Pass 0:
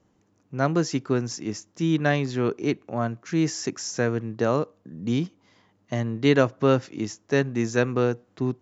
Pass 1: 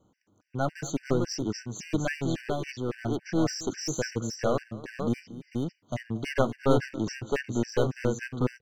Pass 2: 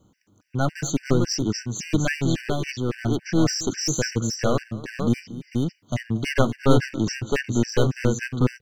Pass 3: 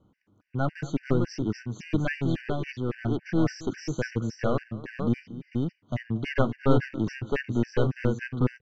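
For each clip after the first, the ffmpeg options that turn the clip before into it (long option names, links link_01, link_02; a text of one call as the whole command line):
ffmpeg -i in.wav -af "aeval=exprs='clip(val(0),-1,0.0447)':channel_layout=same,aecho=1:1:229|447:0.119|0.631,afftfilt=real='re*gt(sin(2*PI*3.6*pts/sr)*(1-2*mod(floor(b*sr/1024/1500),2)),0)':imag='im*gt(sin(2*PI*3.6*pts/sr)*(1-2*mod(floor(b*sr/1024/1500),2)),0)':win_size=1024:overlap=0.75" out.wav
ffmpeg -i in.wav -af "equalizer=frequency=670:width=0.59:gain=-7,volume=9dB" out.wav
ffmpeg -i in.wav -af "lowpass=2600,volume=-4dB" out.wav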